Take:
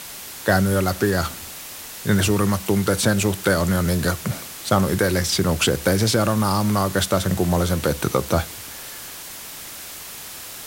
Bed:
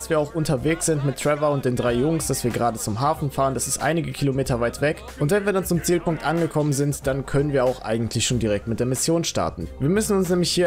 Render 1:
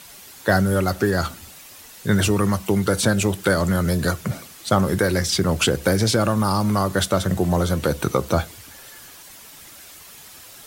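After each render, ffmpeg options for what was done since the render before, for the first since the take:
ffmpeg -i in.wav -af "afftdn=noise_reduction=9:noise_floor=-36" out.wav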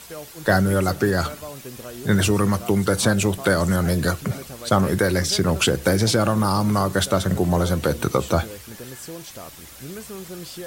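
ffmpeg -i in.wav -i bed.wav -filter_complex "[1:a]volume=-16dB[link_01];[0:a][link_01]amix=inputs=2:normalize=0" out.wav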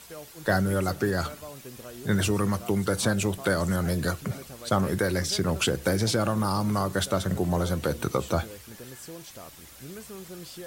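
ffmpeg -i in.wav -af "volume=-6dB" out.wav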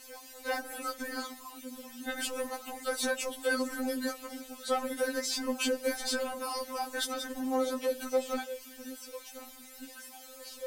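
ffmpeg -i in.wav -af "asoftclip=type=tanh:threshold=-19dB,afftfilt=real='re*3.46*eq(mod(b,12),0)':imag='im*3.46*eq(mod(b,12),0)':win_size=2048:overlap=0.75" out.wav

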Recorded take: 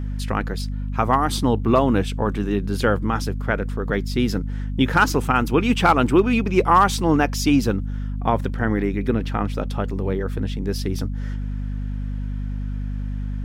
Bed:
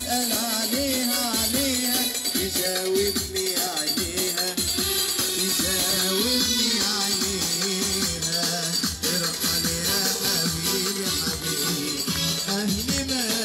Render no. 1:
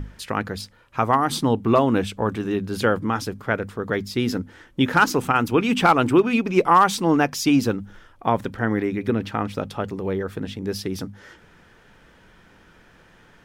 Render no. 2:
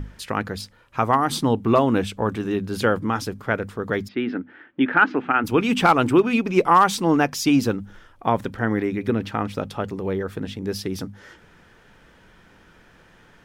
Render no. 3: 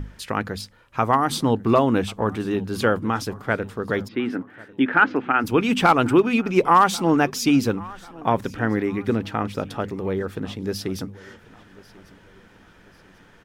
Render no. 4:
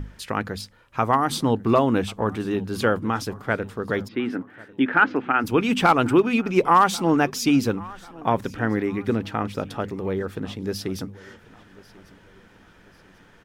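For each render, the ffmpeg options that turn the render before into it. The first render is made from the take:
ffmpeg -i in.wav -af "bandreject=frequency=50:width_type=h:width=6,bandreject=frequency=100:width_type=h:width=6,bandreject=frequency=150:width_type=h:width=6,bandreject=frequency=200:width_type=h:width=6,bandreject=frequency=250:width_type=h:width=6" out.wav
ffmpeg -i in.wav -filter_complex "[0:a]asplit=3[link_01][link_02][link_03];[link_01]afade=type=out:start_time=4.07:duration=0.02[link_04];[link_02]highpass=270,equalizer=frequency=280:width_type=q:width=4:gain=5,equalizer=frequency=500:width_type=q:width=4:gain=-6,equalizer=frequency=1000:width_type=q:width=4:gain=-5,equalizer=frequency=1600:width_type=q:width=4:gain=4,lowpass=frequency=2700:width=0.5412,lowpass=frequency=2700:width=1.3066,afade=type=in:start_time=4.07:duration=0.02,afade=type=out:start_time=5.43:duration=0.02[link_05];[link_03]afade=type=in:start_time=5.43:duration=0.02[link_06];[link_04][link_05][link_06]amix=inputs=3:normalize=0" out.wav
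ffmpeg -i in.wav -af "aecho=1:1:1093|2186|3279:0.075|0.0307|0.0126" out.wav
ffmpeg -i in.wav -af "volume=-1dB" out.wav

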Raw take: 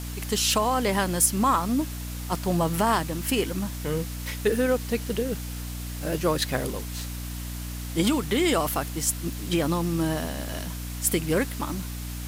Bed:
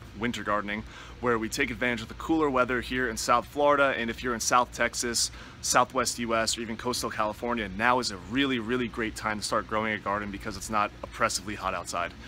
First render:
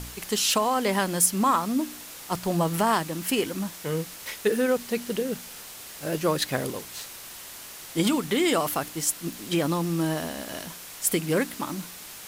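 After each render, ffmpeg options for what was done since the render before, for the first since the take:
ffmpeg -i in.wav -af "bandreject=frequency=60:width_type=h:width=4,bandreject=frequency=120:width_type=h:width=4,bandreject=frequency=180:width_type=h:width=4,bandreject=frequency=240:width_type=h:width=4,bandreject=frequency=300:width_type=h:width=4" out.wav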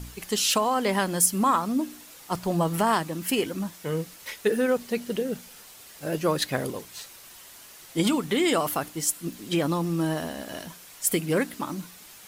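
ffmpeg -i in.wav -af "afftdn=noise_reduction=7:noise_floor=-42" out.wav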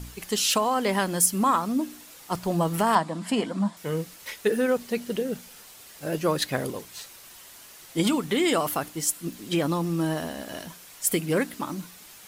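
ffmpeg -i in.wav -filter_complex "[0:a]asettb=1/sr,asplit=3[link_01][link_02][link_03];[link_01]atrim=end=2.954[link_04];[link_02]atrim=start=2.95:end=3.77,asetpts=PTS-STARTPTS,afade=type=in:duration=0.004:curve=qsin,afade=type=out:start_time=0.816:duration=0.004:curve=qsin,highpass=150,equalizer=frequency=210:width_type=q:width=4:gain=9,equalizer=frequency=370:width_type=q:width=4:gain=-6,equalizer=frequency=680:width_type=q:width=4:gain=8,equalizer=frequency=1000:width_type=q:width=4:gain=8,equalizer=frequency=2600:width_type=q:width=4:gain=-6,equalizer=frequency=6100:width_type=q:width=4:gain=-9,lowpass=frequency=8400:width=0.5412,lowpass=frequency=8400:width=1.3066[link_05];[link_03]atrim=start=3.766[link_06];[link_04][link_05]acrossfade=duration=0.004:curve1=hsin:curve2=qsin[link_07];[link_07][link_06]acrossfade=duration=0.004:curve1=qsin:curve2=hsin" out.wav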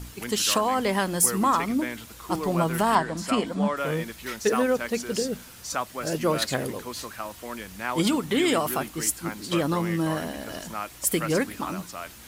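ffmpeg -i in.wav -i bed.wav -filter_complex "[1:a]volume=-7dB[link_01];[0:a][link_01]amix=inputs=2:normalize=0" out.wav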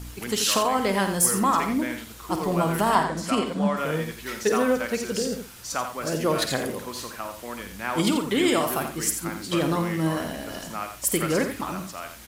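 ffmpeg -i in.wav -filter_complex "[0:a]asplit=2[link_01][link_02];[link_02]adelay=50,volume=-10.5dB[link_03];[link_01][link_03]amix=inputs=2:normalize=0,aecho=1:1:86:0.376" out.wav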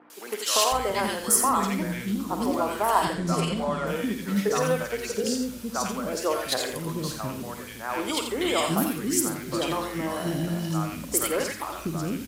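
ffmpeg -i in.wav -filter_complex "[0:a]acrossover=split=330|1700[link_01][link_02][link_03];[link_03]adelay=100[link_04];[link_01]adelay=720[link_05];[link_05][link_02][link_04]amix=inputs=3:normalize=0" out.wav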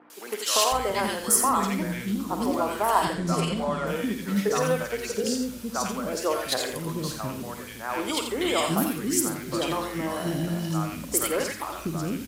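ffmpeg -i in.wav -af anull out.wav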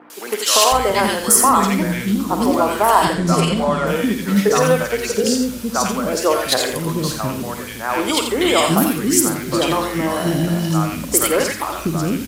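ffmpeg -i in.wav -af "volume=9.5dB,alimiter=limit=-1dB:level=0:latency=1" out.wav

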